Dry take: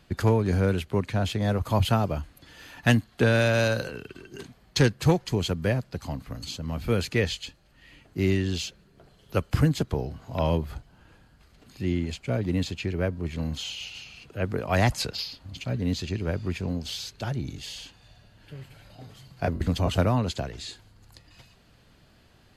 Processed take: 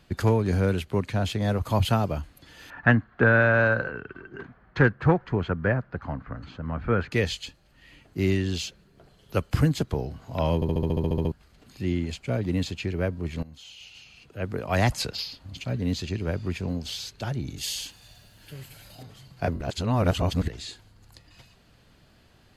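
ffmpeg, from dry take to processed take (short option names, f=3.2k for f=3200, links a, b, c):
-filter_complex "[0:a]asettb=1/sr,asplit=3[a][b][c];[a]atrim=end=2.704[d];[b]atrim=start=2.7:end=7.12,asetpts=PTS-STARTPTS,afade=t=in:d=0.004:c=qsin,afade=t=out:st=4.416:d=0.004:c=qsin,lowpass=f=1.5k:t=q:w=2.7[e];[c]atrim=start=7.116[f];[d][e]acrossfade=d=0.004:c1=hsin:c2=qsin[g];[g][f]acrossfade=d=0.004:c1=qsin:c2=hsin,asettb=1/sr,asplit=3[h][i][j];[h]atrim=end=17.574[k];[i]atrim=start=17.57:end=19.03,asetpts=PTS-STARTPTS,afade=t=in:d=0.004:c=qsin,afade=t=out:st=1.456:d=0.004:c=qsin,aemphasis=mode=production:type=75kf[l];[j]atrim=start=19.026[m];[k][l]acrossfade=d=0.004:c1=hsin:c2=qsin[n];[n][m]acrossfade=d=0.004:c1=qsin:c2=hsin,asplit=15[o][p][q][r][s][t][u][v][w][x][y][z][aa][ab][ac];[o]atrim=end=10.622[ad];[p]atrim=start=10.548:end=10.622[ae];[q]atrim=start=10.548:end=10.622[af];[r]atrim=start=10.548:end=10.622[ag];[s]atrim=start=10.548:end=10.622[ah];[t]atrim=start=10.548:end=10.622[ai];[u]atrim=start=10.548:end=10.622[aj];[v]atrim=start=10.548:end=10.622[ak];[w]atrim=start=10.548:end=10.622[al];[x]atrim=start=10.548:end=10.622[am];[y]atrim=start=10.548:end=10.622[an];[z]atrim=start=11.318:end=13.43,asetpts=PTS-STARTPTS,afade=t=out:st=2.108:d=0.004:c=hsin:silence=0.11885[ao];[aa]atrim=start=13.43:end=19.612,asetpts=PTS-STARTPTS,afade=t=in:d=1.46:silence=0.11885[ap];[ab]atrim=start=19.608:end=20.482,asetpts=PTS-STARTPTS,areverse[aq];[ac]atrim=start=20.478[ar];[ad][ae]acrossfade=d=0.004:c1=hsin:c2=hsin[as];[as][af]acrossfade=d=0.004:c1=hsin:c2=hsin[at];[at][ag]acrossfade=d=0.004:c1=hsin:c2=hsin[au];[au][ah]acrossfade=d=0.004:c1=hsin:c2=hsin[av];[av][ai]acrossfade=d=0.004:c1=hsin:c2=hsin[aw];[aw][aj]acrossfade=d=0.004:c1=hsin:c2=hsin[ax];[ax][ak]acrossfade=d=0.004:c1=hsin:c2=hsin[ay];[ay][al]acrossfade=d=0.004:c1=hsin:c2=hsin[az];[az][am]acrossfade=d=0.004:c1=hsin:c2=hsin[ba];[ba][an]acrossfade=d=0.004:c1=hsin:c2=hsin[bb];[ao][ap]concat=n=2:v=0:a=1[bc];[bb][bc]acrossfade=d=0.004:c1=hsin:c2=hsin[bd];[bd][aq]acrossfade=d=0.004:c1=hsin:c2=hsin[be];[be][ar]acrossfade=d=0.004:c1=hsin:c2=hsin"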